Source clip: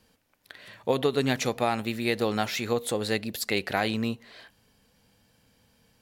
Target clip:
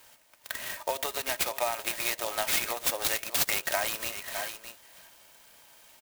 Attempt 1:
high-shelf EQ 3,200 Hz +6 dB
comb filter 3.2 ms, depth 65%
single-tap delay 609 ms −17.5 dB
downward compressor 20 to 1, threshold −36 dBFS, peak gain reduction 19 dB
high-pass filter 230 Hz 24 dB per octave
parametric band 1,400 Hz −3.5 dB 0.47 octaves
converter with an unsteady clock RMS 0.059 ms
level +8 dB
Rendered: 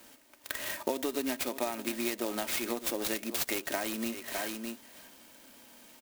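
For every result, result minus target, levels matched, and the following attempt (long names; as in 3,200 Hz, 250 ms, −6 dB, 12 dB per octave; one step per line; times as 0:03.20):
250 Hz band +17.0 dB; downward compressor: peak gain reduction +6 dB
high-shelf EQ 3,200 Hz +6 dB
comb filter 3.2 ms, depth 65%
single-tap delay 609 ms −17.5 dB
downward compressor 20 to 1, threshold −36 dBFS, peak gain reduction 19 dB
high-pass filter 600 Hz 24 dB per octave
parametric band 1,400 Hz −3.5 dB 0.47 octaves
converter with an unsteady clock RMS 0.059 ms
level +8 dB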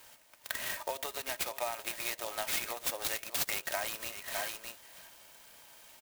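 downward compressor: peak gain reduction +6 dB
high-shelf EQ 3,200 Hz +6 dB
comb filter 3.2 ms, depth 65%
single-tap delay 609 ms −17.5 dB
downward compressor 20 to 1, threshold −29.5 dBFS, peak gain reduction 12.5 dB
high-pass filter 600 Hz 24 dB per octave
parametric band 1,400 Hz −3.5 dB 0.47 octaves
converter with an unsteady clock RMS 0.059 ms
level +8 dB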